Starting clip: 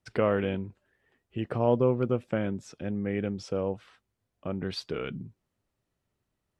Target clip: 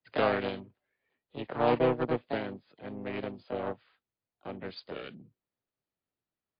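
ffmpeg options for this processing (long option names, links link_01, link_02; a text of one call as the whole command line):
ffmpeg -i in.wav -filter_complex "[0:a]aeval=exprs='0.299*(cos(1*acos(clip(val(0)/0.299,-1,1)))-cos(1*PI/2))+0.0299*(cos(7*acos(clip(val(0)/0.299,-1,1)))-cos(7*PI/2))':channel_layout=same,asplit=2[link_01][link_02];[link_02]asetrate=55563,aresample=44100,atempo=0.793701,volume=-4dB[link_03];[link_01][link_03]amix=inputs=2:normalize=0,acrossover=split=110|360|1400[link_04][link_05][link_06][link_07];[link_05]crystalizer=i=1.5:c=0[link_08];[link_04][link_08][link_06][link_07]amix=inputs=4:normalize=0,lowshelf=frequency=140:gain=-11.5" -ar 11025 -c:a libmp3lame -b:a 32k out.mp3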